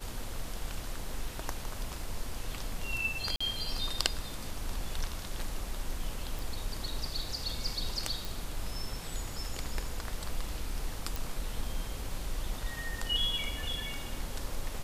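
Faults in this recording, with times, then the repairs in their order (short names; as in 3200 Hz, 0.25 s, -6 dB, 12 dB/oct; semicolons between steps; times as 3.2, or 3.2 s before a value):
3.36–3.4 gap 45 ms
6.39 pop
8.25 pop
11.16 pop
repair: de-click; interpolate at 3.36, 45 ms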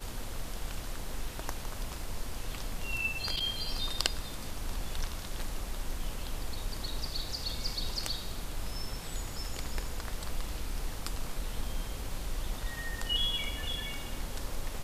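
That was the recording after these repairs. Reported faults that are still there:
none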